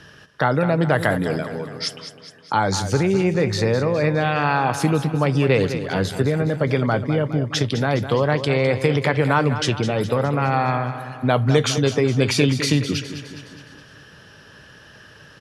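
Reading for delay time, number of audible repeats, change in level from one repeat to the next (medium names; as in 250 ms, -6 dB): 207 ms, 5, -5.5 dB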